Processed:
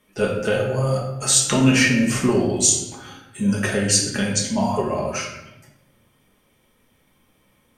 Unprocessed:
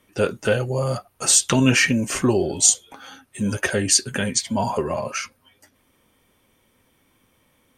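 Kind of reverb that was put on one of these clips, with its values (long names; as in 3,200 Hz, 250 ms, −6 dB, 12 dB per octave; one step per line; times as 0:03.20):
rectangular room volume 370 cubic metres, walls mixed, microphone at 1.4 metres
level −3 dB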